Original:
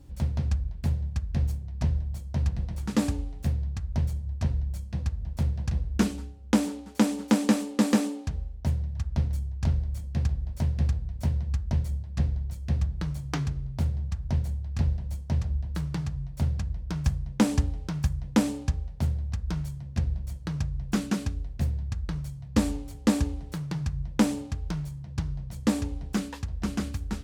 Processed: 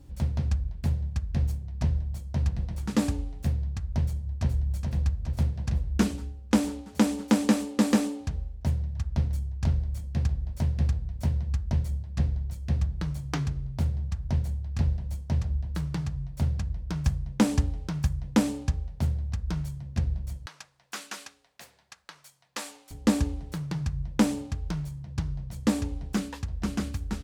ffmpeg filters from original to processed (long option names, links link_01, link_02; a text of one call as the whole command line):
ffmpeg -i in.wav -filter_complex "[0:a]asplit=2[link_01][link_02];[link_02]afade=type=in:start_time=4.04:duration=0.01,afade=type=out:start_time=4.71:duration=0.01,aecho=0:1:420|840|1260|1680|2100|2520|2940|3360|3780|4200:0.562341|0.365522|0.237589|0.154433|0.100381|0.0652479|0.0424112|0.0275673|0.0179187|0.0116472[link_03];[link_01][link_03]amix=inputs=2:normalize=0,asettb=1/sr,asplit=3[link_04][link_05][link_06];[link_04]atrim=end=20.464[link_07];[link_05]atrim=start=20.46:end=22.91,asetpts=PTS-STARTPTS,afade=type=in:duration=0.004:curve=qsin,afade=type=out:start_time=2.446:duration=0.004:curve=qsin,highpass=970[link_08];[link_06]atrim=start=22.906[link_09];[link_07][link_08]acrossfade=duration=0.004:curve1=hsin:curve2=qsin[link_10];[link_10][link_09]acrossfade=duration=0.004:curve1=qsin:curve2=hsin" out.wav